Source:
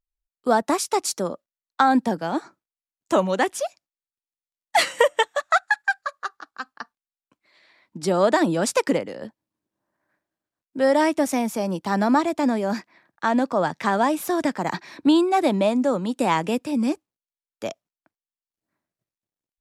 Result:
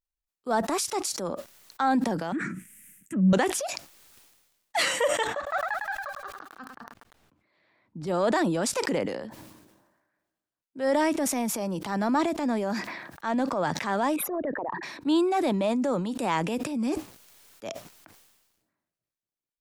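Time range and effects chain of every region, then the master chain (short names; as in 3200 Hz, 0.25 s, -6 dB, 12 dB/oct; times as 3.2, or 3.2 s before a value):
2.32–3.33 treble ducked by the level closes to 610 Hz, closed at -16 dBFS + EQ curve 100 Hz 0 dB, 190 Hz +15 dB, 810 Hz -29 dB, 1900 Hz +7 dB, 2700 Hz 0 dB, 4300 Hz -19 dB, 8700 Hz +11 dB, 14000 Hz +8 dB
5.27–8.07 LPF 1300 Hz 6 dB/oct + bell 85 Hz +10 dB 2.8 oct + lo-fi delay 0.105 s, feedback 35%, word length 8-bit, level -9 dB
14.16–14.83 formant sharpening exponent 3 + air absorption 400 m
whole clip: transient shaper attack -6 dB, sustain +5 dB; sustainer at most 46 dB/s; gain -5 dB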